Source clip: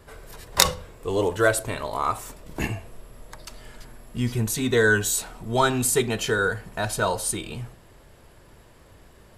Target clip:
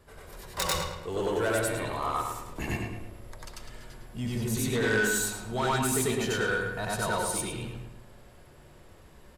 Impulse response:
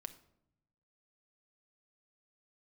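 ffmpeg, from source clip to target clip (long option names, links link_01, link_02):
-filter_complex "[0:a]asplit=2[link_01][link_02];[1:a]atrim=start_sample=2205,adelay=94[link_03];[link_02][link_03]afir=irnorm=-1:irlink=0,volume=6.5dB[link_04];[link_01][link_04]amix=inputs=2:normalize=0,asoftclip=type=tanh:threshold=-15dB,asplit=2[link_05][link_06];[link_06]adelay=108,lowpass=frequency=4200:poles=1,volume=-5dB,asplit=2[link_07][link_08];[link_08]adelay=108,lowpass=frequency=4200:poles=1,volume=0.44,asplit=2[link_09][link_10];[link_10]adelay=108,lowpass=frequency=4200:poles=1,volume=0.44,asplit=2[link_11][link_12];[link_12]adelay=108,lowpass=frequency=4200:poles=1,volume=0.44,asplit=2[link_13][link_14];[link_14]adelay=108,lowpass=frequency=4200:poles=1,volume=0.44[link_15];[link_07][link_09][link_11][link_13][link_15]amix=inputs=5:normalize=0[link_16];[link_05][link_16]amix=inputs=2:normalize=0,volume=-7.5dB"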